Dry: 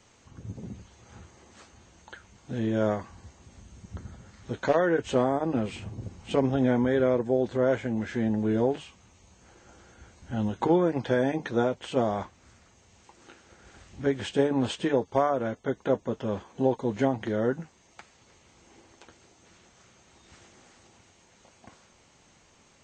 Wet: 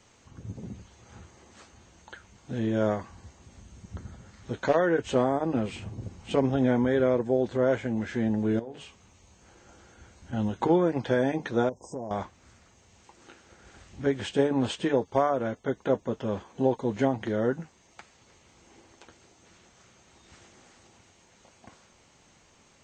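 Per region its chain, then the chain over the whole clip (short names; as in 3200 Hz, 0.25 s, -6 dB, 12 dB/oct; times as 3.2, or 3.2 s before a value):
8.59–10.33 compressor 4:1, threshold -38 dBFS + de-hum 60.63 Hz, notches 38
11.69–12.11 brick-wall FIR band-stop 1100–4900 Hz + compressor, threshold -32 dBFS
whole clip: dry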